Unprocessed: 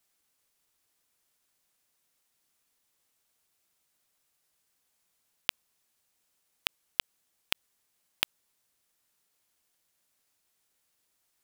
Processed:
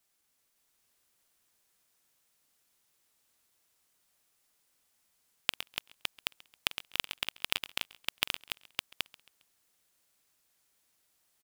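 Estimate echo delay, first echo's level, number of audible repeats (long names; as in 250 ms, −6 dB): 45 ms, −17.0 dB, 11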